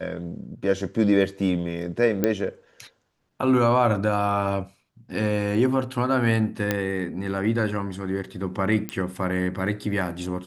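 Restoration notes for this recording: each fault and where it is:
0:02.24: click −8 dBFS
0:06.71: click −8 dBFS
0:08.89: click −13 dBFS

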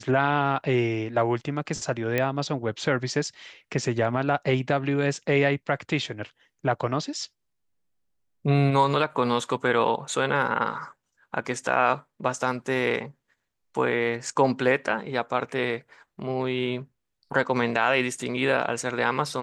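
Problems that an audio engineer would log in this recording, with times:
0:02.18: click −11 dBFS

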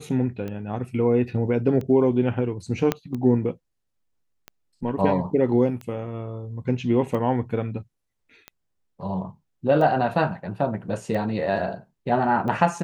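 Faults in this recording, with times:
scratch tick 45 rpm −21 dBFS
0:02.92: click −8 dBFS

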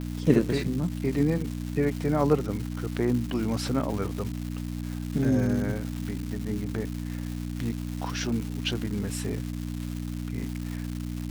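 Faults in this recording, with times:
surface crackle 470 per second −33 dBFS
mains hum 60 Hz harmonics 5 −33 dBFS

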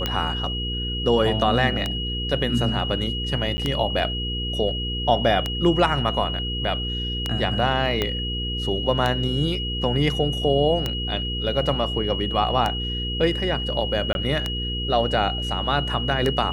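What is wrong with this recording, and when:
mains hum 60 Hz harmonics 8 −29 dBFS
scratch tick 33 1/3 rpm −9 dBFS
whistle 2,900 Hz −28 dBFS
0:03.57–0:03.58: drop-out 10 ms
0:08.02: click −9 dBFS
0:14.13–0:14.15: drop-out 21 ms

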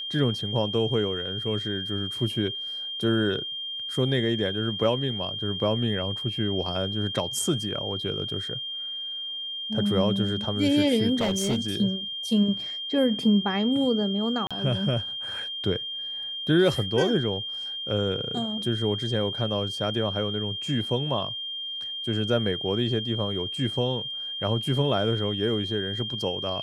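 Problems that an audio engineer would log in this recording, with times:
whistle 3,200 Hz −31 dBFS
0:11.15–0:11.59: clipping −20 dBFS
0:14.47–0:14.51: drop-out 36 ms

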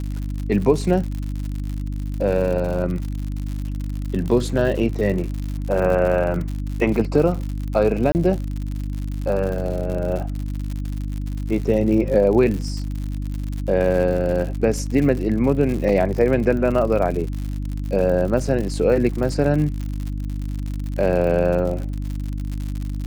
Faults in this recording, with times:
surface crackle 94 per second −27 dBFS
mains hum 50 Hz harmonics 6 −26 dBFS
0:08.12–0:08.15: drop-out 29 ms
0:15.89: drop-out 2.2 ms

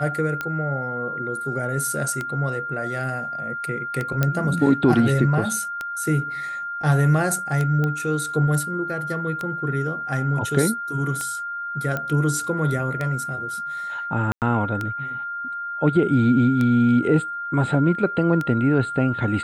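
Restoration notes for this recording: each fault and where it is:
scratch tick 33 1/3 rpm −13 dBFS
whistle 1,400 Hz −27 dBFS
0:04.23: click −7 dBFS
0:07.84: click −14 dBFS
0:11.97: click −13 dBFS
0:14.32–0:14.42: drop-out 98 ms

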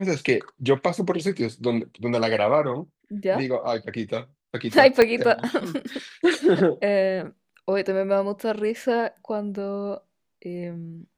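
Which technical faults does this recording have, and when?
0:05.02: click −6 dBFS

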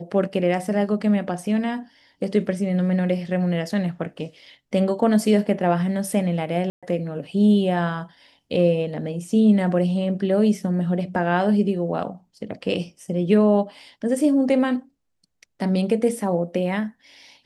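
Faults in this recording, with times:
0:06.70–0:06.83: drop-out 126 ms

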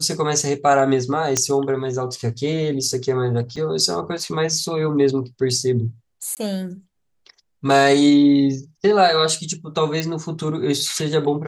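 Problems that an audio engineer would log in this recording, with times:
0:01.37: click −4 dBFS
0:03.56–0:03.57: drop-out 5.4 ms
0:06.35–0:06.37: drop-out 18 ms
0:10.00: click −9 dBFS

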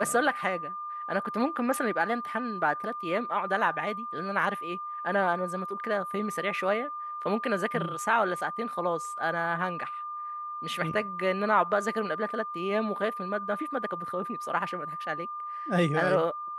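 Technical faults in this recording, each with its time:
whistle 1,200 Hz −34 dBFS

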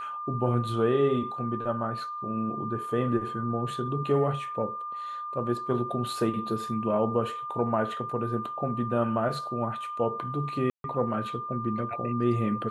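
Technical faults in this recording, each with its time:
whistle 1,200 Hz −33 dBFS
0:10.70–0:10.84: drop-out 142 ms

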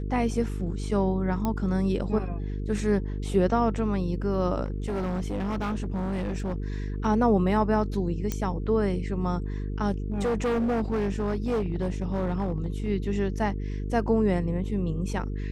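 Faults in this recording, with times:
mains buzz 50 Hz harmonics 9 −31 dBFS
0:01.45: click −15 dBFS
0:04.64–0:07.06: clipping −25.5 dBFS
0:08.32: click −14 dBFS
0:10.12–0:12.89: clipping −22.5 dBFS

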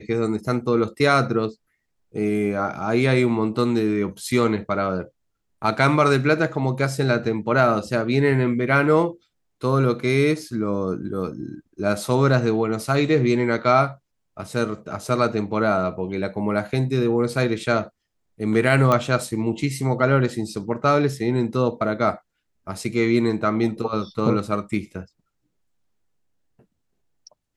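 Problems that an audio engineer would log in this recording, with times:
0:18.92: click −8 dBFS

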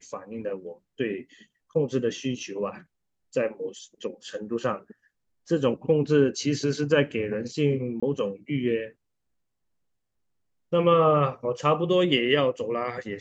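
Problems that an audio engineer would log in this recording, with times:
0:08.00–0:08.03: drop-out 25 ms

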